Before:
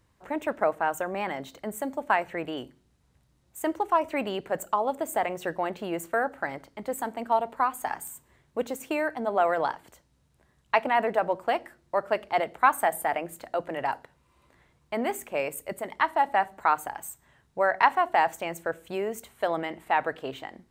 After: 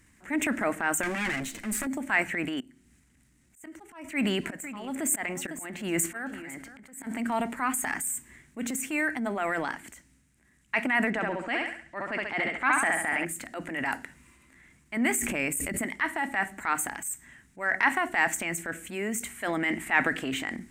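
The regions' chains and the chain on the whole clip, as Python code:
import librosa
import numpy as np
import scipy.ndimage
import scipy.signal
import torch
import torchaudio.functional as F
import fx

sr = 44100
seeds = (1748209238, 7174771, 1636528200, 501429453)

y = fx.chain(x, sr, fx.lower_of_two(delay_ms=8.8),
    fx.band_squash(depth_pct=70), at=(1.03, 1.87))
y = fx.chain(y, sr, fx.auto_swell(attack_ms=380.0),
    fx.echo_single(ms=502, db=-17.0), at=(2.6, 7.07))
y = fx.chain(y, sr, fx.lowpass(hz=5500.0, slope=12),
    fx.echo_thinned(ms=67, feedback_pct=38, hz=170.0, wet_db=-5.0), at=(11.1, 13.25))
y = fx.chain(y, sr, fx.low_shelf(hz=270.0, db=7.5),
    fx.hum_notches(base_hz=50, count=2),
    fx.pre_swell(db_per_s=110.0), at=(15.2, 15.86))
y = fx.graphic_eq_10(y, sr, hz=(125, 250, 500, 1000, 2000, 4000, 8000), db=(-5, 10, -11, -7, 11, -7, 11))
y = fx.transient(y, sr, attack_db=-7, sustain_db=6)
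y = fx.rider(y, sr, range_db=10, speed_s=2.0)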